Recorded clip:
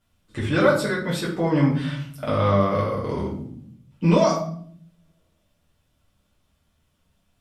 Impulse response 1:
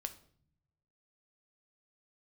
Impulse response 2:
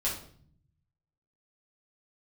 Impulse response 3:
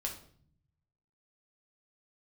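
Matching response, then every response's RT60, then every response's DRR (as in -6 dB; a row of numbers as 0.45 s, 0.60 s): 2; 0.60 s, 0.55 s, 0.55 s; 7.5 dB, -6.5 dB, 0.0 dB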